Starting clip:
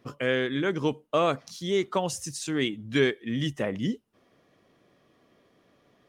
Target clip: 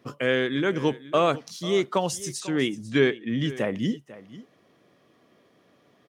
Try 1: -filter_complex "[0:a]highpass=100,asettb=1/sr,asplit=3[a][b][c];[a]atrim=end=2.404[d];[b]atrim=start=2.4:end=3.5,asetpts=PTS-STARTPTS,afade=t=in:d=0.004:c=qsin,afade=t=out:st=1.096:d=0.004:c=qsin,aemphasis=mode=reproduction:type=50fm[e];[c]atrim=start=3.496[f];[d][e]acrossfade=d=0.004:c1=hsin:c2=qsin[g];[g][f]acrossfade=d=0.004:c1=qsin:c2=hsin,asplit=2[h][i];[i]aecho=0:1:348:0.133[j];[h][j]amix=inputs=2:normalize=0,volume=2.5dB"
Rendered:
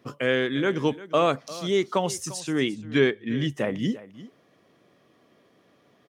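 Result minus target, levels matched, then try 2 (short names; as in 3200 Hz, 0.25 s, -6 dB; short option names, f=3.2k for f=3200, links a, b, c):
echo 0.148 s early
-filter_complex "[0:a]highpass=100,asettb=1/sr,asplit=3[a][b][c];[a]atrim=end=2.404[d];[b]atrim=start=2.4:end=3.5,asetpts=PTS-STARTPTS,afade=t=in:d=0.004:c=qsin,afade=t=out:st=1.096:d=0.004:c=qsin,aemphasis=mode=reproduction:type=50fm[e];[c]atrim=start=3.496[f];[d][e]acrossfade=d=0.004:c1=hsin:c2=qsin[g];[g][f]acrossfade=d=0.004:c1=qsin:c2=hsin,asplit=2[h][i];[i]aecho=0:1:496:0.133[j];[h][j]amix=inputs=2:normalize=0,volume=2.5dB"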